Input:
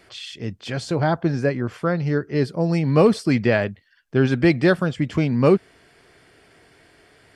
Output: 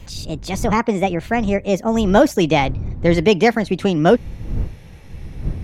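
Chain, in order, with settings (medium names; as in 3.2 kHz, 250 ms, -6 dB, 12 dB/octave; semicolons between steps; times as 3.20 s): gliding tape speed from 143% -> 118%; wind noise 94 Hz -31 dBFS; trim +3 dB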